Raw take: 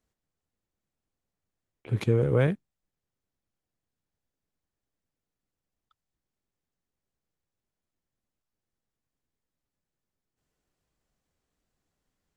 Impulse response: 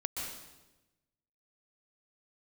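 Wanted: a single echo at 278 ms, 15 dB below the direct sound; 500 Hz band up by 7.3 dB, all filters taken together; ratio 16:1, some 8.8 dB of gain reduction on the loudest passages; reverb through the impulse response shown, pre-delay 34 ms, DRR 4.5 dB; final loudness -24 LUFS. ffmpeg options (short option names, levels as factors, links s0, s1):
-filter_complex "[0:a]equalizer=f=500:t=o:g=8,acompressor=threshold=0.0794:ratio=16,aecho=1:1:278:0.178,asplit=2[s0][s1];[1:a]atrim=start_sample=2205,adelay=34[s2];[s1][s2]afir=irnorm=-1:irlink=0,volume=0.422[s3];[s0][s3]amix=inputs=2:normalize=0,volume=1.68"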